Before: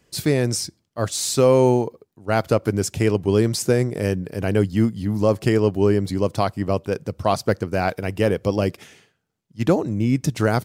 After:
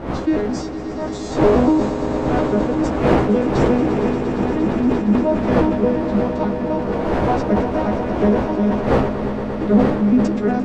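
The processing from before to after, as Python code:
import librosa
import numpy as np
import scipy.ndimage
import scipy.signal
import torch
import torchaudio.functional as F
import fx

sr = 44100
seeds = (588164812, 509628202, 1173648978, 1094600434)

y = fx.vocoder_arp(x, sr, chord='minor triad', root=56, every_ms=119)
y = fx.dmg_wind(y, sr, seeds[0], corner_hz=580.0, level_db=-26.0)
y = fx.high_shelf(y, sr, hz=6100.0, db=-4.5)
y = fx.doubler(y, sr, ms=15.0, db=-5.0)
y = fx.echo_swell(y, sr, ms=116, loudest=5, wet_db=-13)
y = fx.sustainer(y, sr, db_per_s=55.0)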